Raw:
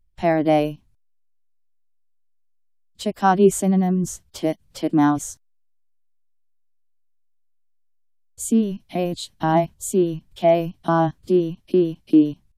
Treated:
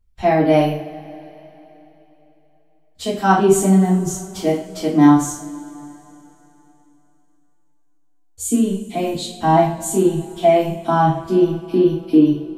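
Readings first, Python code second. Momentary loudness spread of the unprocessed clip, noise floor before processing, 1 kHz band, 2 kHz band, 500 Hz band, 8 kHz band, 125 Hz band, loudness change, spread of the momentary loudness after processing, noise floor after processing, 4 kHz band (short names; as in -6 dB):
10 LU, -62 dBFS, +4.5 dB, +4.0 dB, +3.5 dB, +4.5 dB, +4.5 dB, +4.0 dB, 15 LU, -55 dBFS, +4.5 dB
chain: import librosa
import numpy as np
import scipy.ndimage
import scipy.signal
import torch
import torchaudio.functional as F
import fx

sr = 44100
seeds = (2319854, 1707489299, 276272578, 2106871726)

y = fx.rev_double_slope(x, sr, seeds[0], early_s=0.43, late_s=3.5, knee_db=-22, drr_db=-6.5)
y = F.gain(torch.from_numpy(y), -3.0).numpy()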